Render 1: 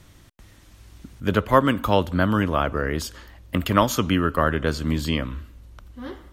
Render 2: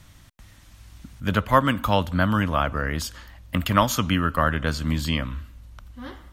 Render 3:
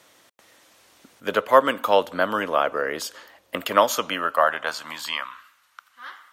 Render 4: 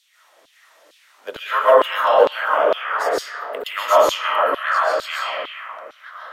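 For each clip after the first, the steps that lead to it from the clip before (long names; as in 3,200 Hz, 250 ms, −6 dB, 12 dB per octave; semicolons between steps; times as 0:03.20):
parametric band 390 Hz −10 dB 0.83 octaves; level +1 dB
high-pass filter sweep 450 Hz → 1,300 Hz, 0:03.80–0:05.61
comb and all-pass reverb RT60 2.9 s, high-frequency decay 0.3×, pre-delay 95 ms, DRR −9 dB; auto-filter high-pass saw down 2.2 Hz 370–3,800 Hz; level −7.5 dB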